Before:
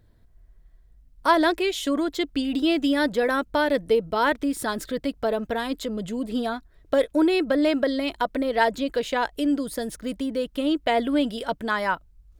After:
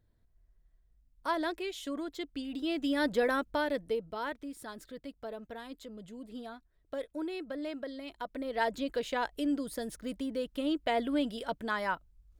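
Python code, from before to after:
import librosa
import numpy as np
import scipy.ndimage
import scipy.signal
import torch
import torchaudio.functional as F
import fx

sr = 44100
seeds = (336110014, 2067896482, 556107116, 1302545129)

y = fx.gain(x, sr, db=fx.line((2.58, -13.0), (3.18, -5.0), (4.45, -17.0), (8.05, -17.0), (8.77, -8.0)))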